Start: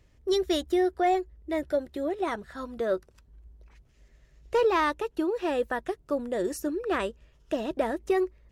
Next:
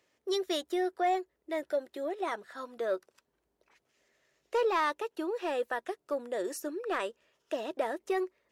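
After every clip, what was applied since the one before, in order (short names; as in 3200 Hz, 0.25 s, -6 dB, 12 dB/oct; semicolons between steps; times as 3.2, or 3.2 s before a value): HPF 410 Hz 12 dB/oct; in parallel at -3.5 dB: soft clip -22 dBFS, distortion -15 dB; on the sum: gain -6.5 dB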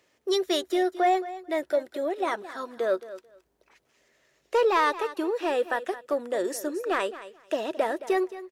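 feedback echo 0.219 s, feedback 17%, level -15 dB; gain +6 dB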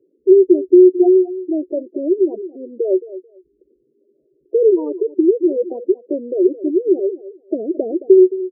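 synth low-pass 370 Hz, resonance Q 4.4; spectral gate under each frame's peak -15 dB strong; gain +5 dB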